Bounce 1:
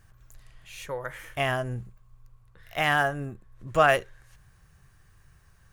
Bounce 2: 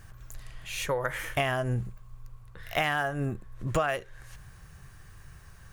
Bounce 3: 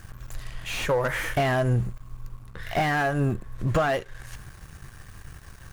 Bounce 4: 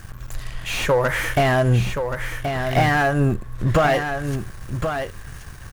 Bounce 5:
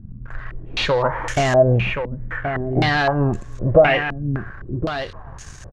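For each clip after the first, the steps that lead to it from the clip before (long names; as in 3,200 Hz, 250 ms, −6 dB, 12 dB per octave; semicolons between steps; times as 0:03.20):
downward compressor 12 to 1, threshold −32 dBFS, peak gain reduction 18 dB; level +8 dB
leveller curve on the samples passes 2; slew-rate limiting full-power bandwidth 110 Hz
single-tap delay 1,076 ms −7 dB; level +5.5 dB
far-end echo of a speakerphone 300 ms, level −27 dB; low-pass on a step sequencer 3.9 Hz 220–6,700 Hz; level −1 dB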